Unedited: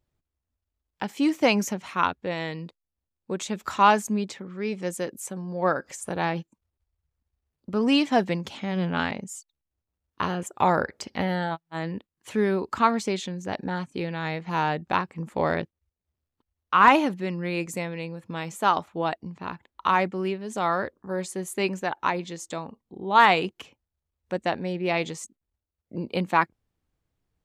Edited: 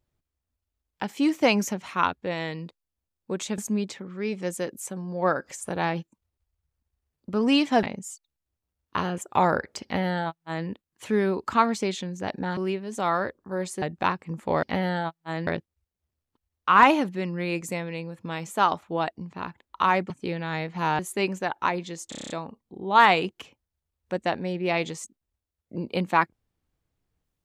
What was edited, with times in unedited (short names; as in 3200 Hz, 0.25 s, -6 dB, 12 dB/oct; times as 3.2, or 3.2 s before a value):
3.58–3.98 cut
8.23–9.08 cut
11.09–11.93 copy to 15.52
13.82–14.71 swap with 20.15–21.4
22.5 stutter 0.03 s, 8 plays